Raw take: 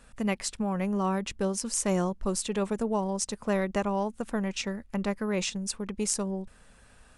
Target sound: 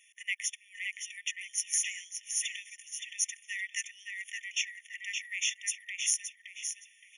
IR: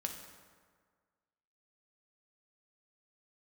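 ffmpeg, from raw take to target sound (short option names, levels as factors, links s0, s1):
-filter_complex "[0:a]asplit=2[s0][s1];[s1]adelay=569,lowpass=f=4700:p=1,volume=0.708,asplit=2[s2][s3];[s3]adelay=569,lowpass=f=4700:p=1,volume=0.33,asplit=2[s4][s5];[s5]adelay=569,lowpass=f=4700:p=1,volume=0.33,asplit=2[s6][s7];[s7]adelay=569,lowpass=f=4700:p=1,volume=0.33[s8];[s0][s2][s4][s6][s8]amix=inputs=5:normalize=0,afftfilt=real='re*eq(mod(floor(b*sr/1024/1800),2),1)':imag='im*eq(mod(floor(b*sr/1024/1800),2),1)':win_size=1024:overlap=0.75,volume=1.58"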